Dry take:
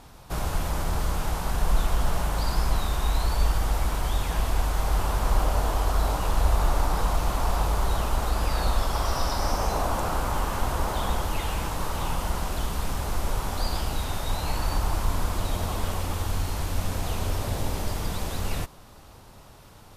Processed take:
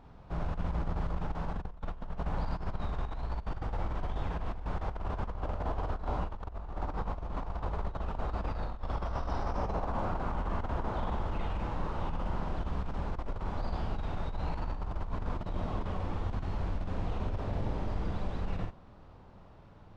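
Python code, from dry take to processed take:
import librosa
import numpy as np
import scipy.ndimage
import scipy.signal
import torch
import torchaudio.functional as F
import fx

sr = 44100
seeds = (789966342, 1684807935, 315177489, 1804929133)

y = fx.spacing_loss(x, sr, db_at_10k=35)
y = fx.room_early_taps(y, sr, ms=(37, 49), db=(-16.0, -3.5))
y = fx.over_compress(y, sr, threshold_db=-25.0, ratio=-0.5)
y = fx.peak_eq(y, sr, hz=190.0, db=3.5, octaves=0.31)
y = F.gain(torch.from_numpy(y), -7.0).numpy()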